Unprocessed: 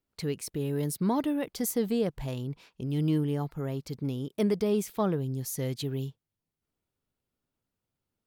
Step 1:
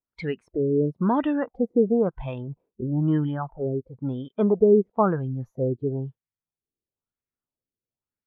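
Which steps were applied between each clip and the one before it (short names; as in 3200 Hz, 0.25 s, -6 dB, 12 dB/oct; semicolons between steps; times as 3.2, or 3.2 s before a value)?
LFO low-pass sine 1 Hz 390–2200 Hz; spectral noise reduction 17 dB; gain +4.5 dB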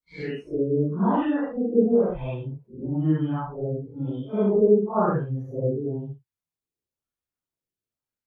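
phase scrambler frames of 0.2 s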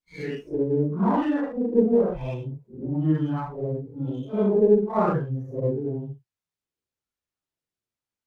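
running maximum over 3 samples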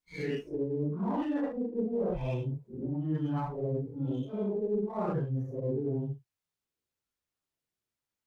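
dynamic EQ 1400 Hz, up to -6 dB, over -41 dBFS, Q 1.4; reverse; compressor 10:1, threshold -28 dBFS, peak gain reduction 15.5 dB; reverse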